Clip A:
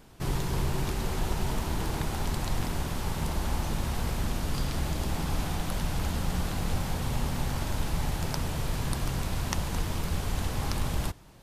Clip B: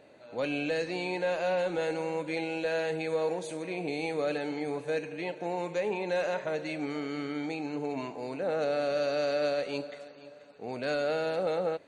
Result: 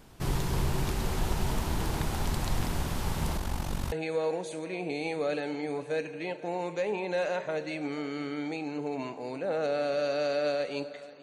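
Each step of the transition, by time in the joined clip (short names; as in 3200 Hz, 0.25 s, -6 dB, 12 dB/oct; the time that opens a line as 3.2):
clip A
3.37–3.92 AM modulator 47 Hz, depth 55%
3.92 switch to clip B from 2.9 s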